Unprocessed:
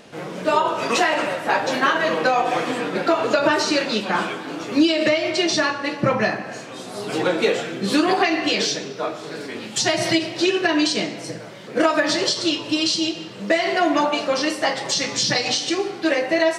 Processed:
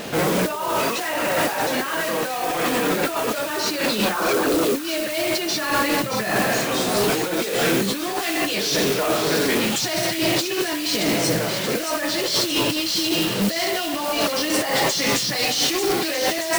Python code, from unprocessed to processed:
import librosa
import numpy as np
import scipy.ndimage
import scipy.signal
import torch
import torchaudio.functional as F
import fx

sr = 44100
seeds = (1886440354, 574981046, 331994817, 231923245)

p1 = fx.envelope_sharpen(x, sr, power=2.0, at=(4.14, 4.82))
p2 = fx.over_compress(p1, sr, threshold_db=-29.0, ratio=-1.0)
p3 = fx.mod_noise(p2, sr, seeds[0], snr_db=11)
p4 = p3 + fx.echo_wet_highpass(p3, sr, ms=627, feedback_pct=65, hz=2400.0, wet_db=-7.5, dry=0)
p5 = 10.0 ** (-22.0 / 20.0) * np.tanh(p4 / 10.0 ** (-22.0 / 20.0))
y = p5 * librosa.db_to_amplitude(7.5)